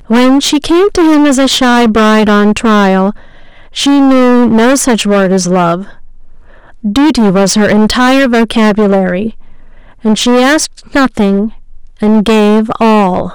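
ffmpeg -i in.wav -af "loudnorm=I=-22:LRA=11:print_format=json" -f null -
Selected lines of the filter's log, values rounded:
"input_i" : "-8.7",
"input_tp" : "-3.7",
"input_lra" : "2.1",
"input_thresh" : "-19.3",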